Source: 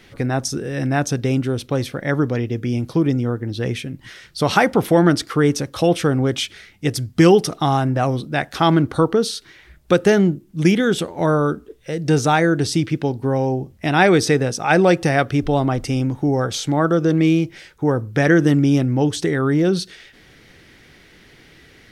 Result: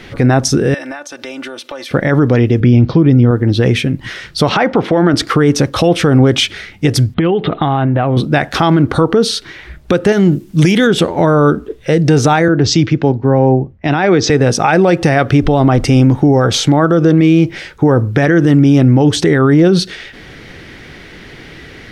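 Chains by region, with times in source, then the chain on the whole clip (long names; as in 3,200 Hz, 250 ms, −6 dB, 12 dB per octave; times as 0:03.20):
0:00.74–0:01.91: high-pass filter 680 Hz + downward compressor 20 to 1, threshold −37 dBFS + comb filter 3.4 ms
0:02.60–0:03.31: low-pass filter 4,900 Hz 24 dB per octave + low-shelf EQ 210 Hz +7 dB
0:04.49–0:05.14: high-pass filter 200 Hz 6 dB per octave + high-frequency loss of the air 140 metres
0:07.14–0:08.17: Butterworth low-pass 3,800 Hz 72 dB per octave + downward compressor 20 to 1, threshold −23 dBFS + one half of a high-frequency compander encoder only
0:10.12–0:10.87: downward compressor, threshold −17 dBFS + high-shelf EQ 3,000 Hz +11 dB
0:12.48–0:14.30: Butterworth low-pass 7,300 Hz 72 dB per octave + multiband upward and downward expander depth 100%
whole clip: high-shelf EQ 6,200 Hz −11.5 dB; downward compressor, threshold −17 dBFS; boost into a limiter +15.5 dB; level −1 dB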